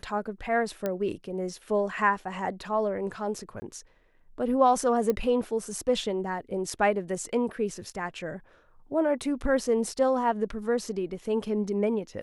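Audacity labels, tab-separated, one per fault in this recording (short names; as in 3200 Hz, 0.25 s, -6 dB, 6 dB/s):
0.860000	0.860000	pop -16 dBFS
3.600000	3.620000	gap 20 ms
5.100000	5.100000	pop -15 dBFS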